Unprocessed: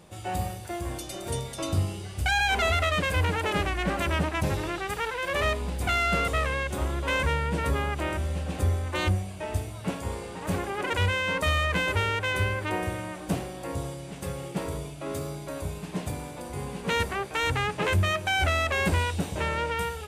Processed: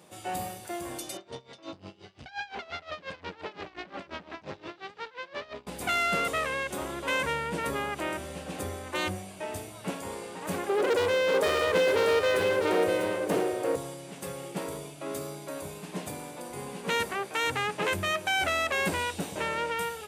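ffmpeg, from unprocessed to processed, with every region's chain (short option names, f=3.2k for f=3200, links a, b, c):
-filter_complex "[0:a]asettb=1/sr,asplit=3[a][b][c];[a]atrim=end=1.174[d];[b]atrim=start=1.17:end=5.67,asetpts=PTS-STARTPTS,afade=t=in:d=0.004:c=qsin,afade=t=out:st=4.496:d=0.004:c=qsin,aeval=exprs='(tanh(22.4*val(0)+0.45)-tanh(0.45))/22.4':c=same,lowpass=f=5k:w=0.5412,lowpass=f=5k:w=1.3066,aeval=exprs='val(0)*pow(10,-20*(0.5-0.5*cos(2*PI*5.7*n/s))/20)':c=same[e];[c]atrim=start=5.666[f];[d][e]acrossfade=d=0.004:c1=hsin:c2=qsin[g];[g][f]acrossfade=d=0.004:c1=qsin:c2=hsin,asettb=1/sr,asplit=3[h][i][j];[h]atrim=end=10.694[k];[i]atrim=start=10.69:end=13.76,asetpts=PTS-STARTPTS,afade=t=in:d=0.004:c=qsin,afade=t=out:st=3.066:d=0.004:c=qsin,equalizer=f=460:w=1.7:g=15,volume=20dB,asoftclip=hard,volume=-20dB,aecho=1:1:648:0.501,atrim=end_sample=135387[l];[j]atrim=start=13.756[m];[k][l]acrossfade=d=0.004:c1=hsin:c2=qsin[n];[n][m]acrossfade=d=0.004:c1=qsin:c2=hsin,highpass=200,highshelf=f=8.7k:g=4.5,volume=-1.5dB"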